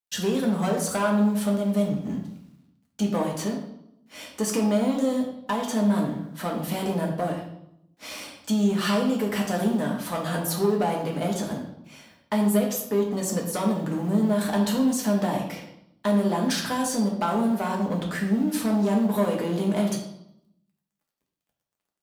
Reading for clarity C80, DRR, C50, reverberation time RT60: 8.5 dB, -1.0 dB, 5.5 dB, 0.80 s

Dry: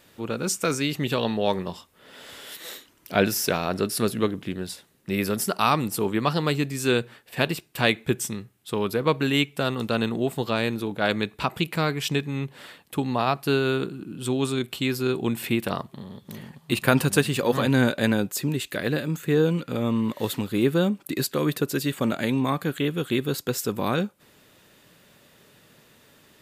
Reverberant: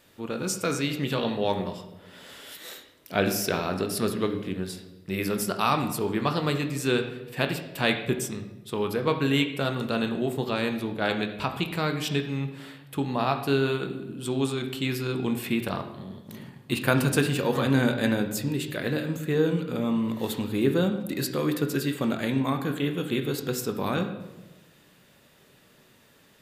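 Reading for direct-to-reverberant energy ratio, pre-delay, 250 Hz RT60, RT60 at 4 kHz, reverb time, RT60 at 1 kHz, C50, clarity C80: 5.5 dB, 22 ms, 1.3 s, 0.80 s, 1.1 s, 0.95 s, 8.5 dB, 11.0 dB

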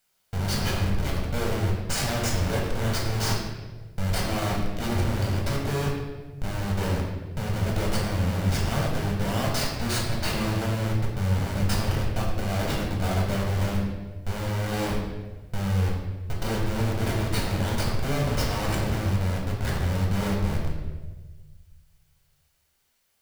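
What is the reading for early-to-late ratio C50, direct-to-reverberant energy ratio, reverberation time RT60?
2.5 dB, -3.5 dB, 1.3 s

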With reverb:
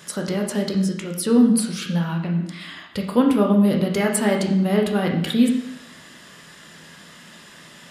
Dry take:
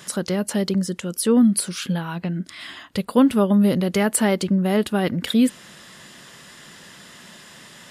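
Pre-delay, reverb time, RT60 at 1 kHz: 7 ms, 0.85 s, 0.85 s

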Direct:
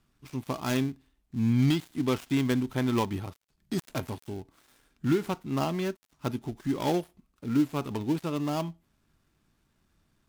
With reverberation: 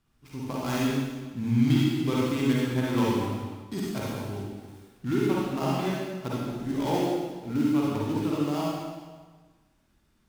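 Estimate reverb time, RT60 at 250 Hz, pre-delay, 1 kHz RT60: 1.4 s, 1.3 s, 35 ms, 1.4 s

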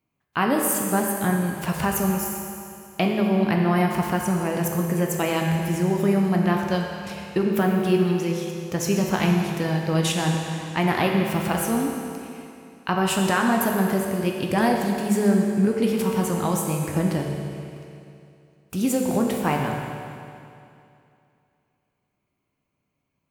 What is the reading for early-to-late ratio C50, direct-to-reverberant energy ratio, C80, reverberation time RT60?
2.0 dB, 0.5 dB, 3.0 dB, 2.6 s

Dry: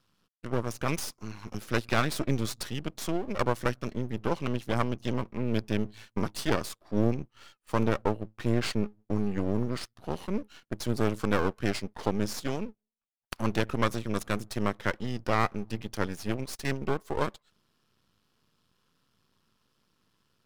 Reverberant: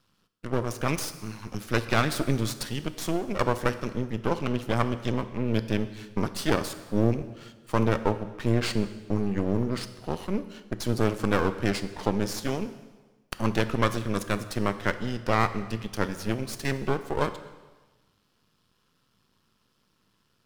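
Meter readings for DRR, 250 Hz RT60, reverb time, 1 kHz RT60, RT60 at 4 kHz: 11.0 dB, 1.3 s, 1.3 s, 1.3 s, 1.2 s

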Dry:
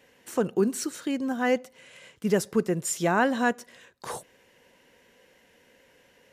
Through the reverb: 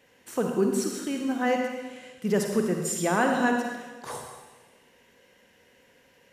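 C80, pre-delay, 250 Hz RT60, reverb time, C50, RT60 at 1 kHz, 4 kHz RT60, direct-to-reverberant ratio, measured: 4.5 dB, 39 ms, 1.4 s, 1.3 s, 2.5 dB, 1.3 s, 1.3 s, 2.0 dB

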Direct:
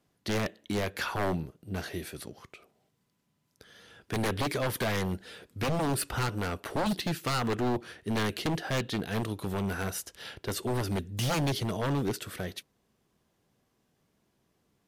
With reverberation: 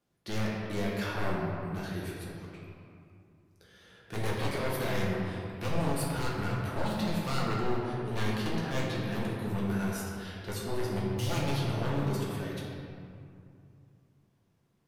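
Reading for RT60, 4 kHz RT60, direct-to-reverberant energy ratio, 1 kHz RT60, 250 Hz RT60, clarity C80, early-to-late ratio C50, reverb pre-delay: 2.5 s, 1.3 s, -5.5 dB, 2.4 s, 3.0 s, 0.5 dB, -0.5 dB, 6 ms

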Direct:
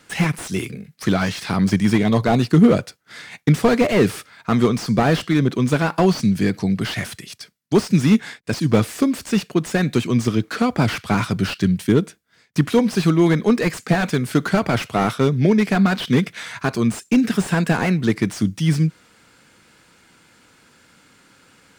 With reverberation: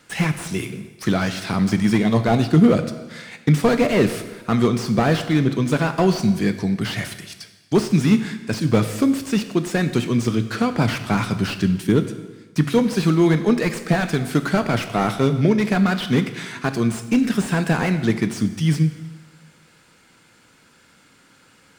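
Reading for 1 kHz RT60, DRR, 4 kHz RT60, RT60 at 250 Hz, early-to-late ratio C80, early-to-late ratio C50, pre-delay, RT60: 1.3 s, 9.0 dB, 1.2 s, 1.3 s, 12.5 dB, 11.5 dB, 4 ms, 1.3 s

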